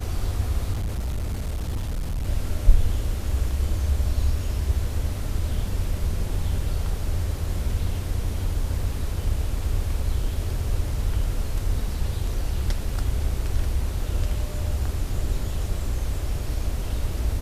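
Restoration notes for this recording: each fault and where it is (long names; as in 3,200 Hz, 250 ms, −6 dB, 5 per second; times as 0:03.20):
0:00.72–0:02.28: clipping −23.5 dBFS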